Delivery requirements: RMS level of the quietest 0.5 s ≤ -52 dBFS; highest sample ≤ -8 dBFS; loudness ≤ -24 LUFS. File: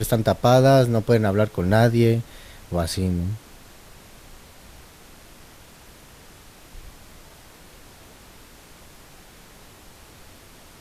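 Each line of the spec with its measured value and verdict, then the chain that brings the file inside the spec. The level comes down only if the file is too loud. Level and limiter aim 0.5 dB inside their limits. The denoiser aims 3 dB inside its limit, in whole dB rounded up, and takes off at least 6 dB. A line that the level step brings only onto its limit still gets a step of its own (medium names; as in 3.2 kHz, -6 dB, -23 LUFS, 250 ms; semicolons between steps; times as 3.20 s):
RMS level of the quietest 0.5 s -47 dBFS: fail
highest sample -4.5 dBFS: fail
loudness -20.0 LUFS: fail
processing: noise reduction 6 dB, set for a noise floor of -47 dBFS; trim -4.5 dB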